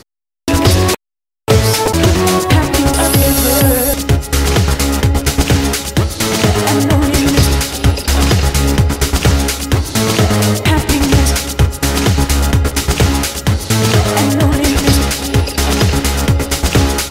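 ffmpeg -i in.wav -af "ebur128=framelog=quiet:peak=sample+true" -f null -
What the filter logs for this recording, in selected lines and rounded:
Integrated loudness:
  I:         -12.7 LUFS
  Threshold: -22.8 LUFS
Loudness range:
  LRA:         1.4 LU
  Threshold: -32.7 LUFS
  LRA low:   -13.2 LUFS
  LRA high:  -11.7 LUFS
Sample peak:
  Peak:       -1.8 dBFS
True peak:
  Peak:       -1.5 dBFS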